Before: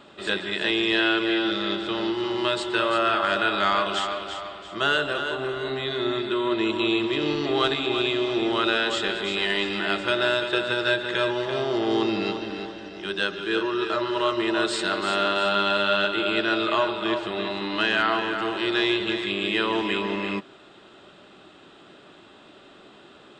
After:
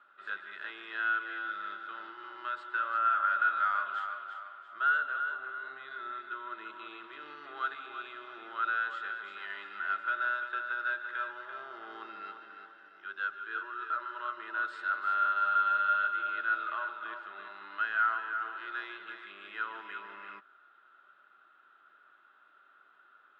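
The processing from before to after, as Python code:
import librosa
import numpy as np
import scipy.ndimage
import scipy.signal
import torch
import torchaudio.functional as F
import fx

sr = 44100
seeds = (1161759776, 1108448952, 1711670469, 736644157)

y = fx.bandpass_q(x, sr, hz=1400.0, q=8.7)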